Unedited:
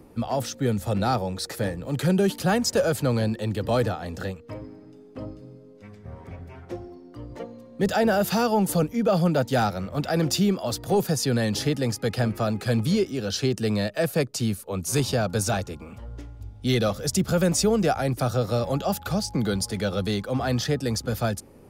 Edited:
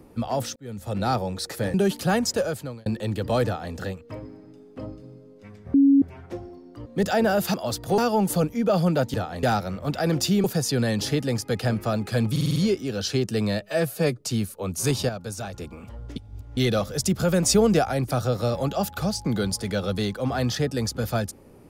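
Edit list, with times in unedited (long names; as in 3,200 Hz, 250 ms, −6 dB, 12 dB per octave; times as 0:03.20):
0:00.56–0:01.11: fade in
0:01.74–0:02.13: remove
0:02.63–0:03.25: fade out
0:03.84–0:04.13: duplicate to 0:09.53
0:06.13–0:06.41: beep over 277 Hz −12.5 dBFS
0:07.25–0:07.69: remove
0:10.54–0:10.98: move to 0:08.37
0:12.85: stutter 0.05 s, 6 plays
0:13.90–0:14.30: time-stretch 1.5×
0:15.18–0:15.63: clip gain −8.5 dB
0:16.25–0:16.66: reverse
0:17.55–0:17.88: clip gain +3 dB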